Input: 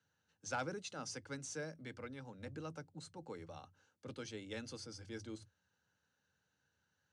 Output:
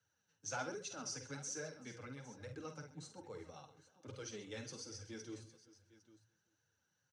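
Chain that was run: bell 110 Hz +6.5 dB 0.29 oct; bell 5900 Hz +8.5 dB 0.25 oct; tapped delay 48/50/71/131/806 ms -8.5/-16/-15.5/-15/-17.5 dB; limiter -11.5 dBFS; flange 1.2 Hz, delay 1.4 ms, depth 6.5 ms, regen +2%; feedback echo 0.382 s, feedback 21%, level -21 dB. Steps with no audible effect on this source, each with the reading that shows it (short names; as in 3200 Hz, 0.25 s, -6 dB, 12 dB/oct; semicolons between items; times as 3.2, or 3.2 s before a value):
limiter -11.5 dBFS: input peak -25.5 dBFS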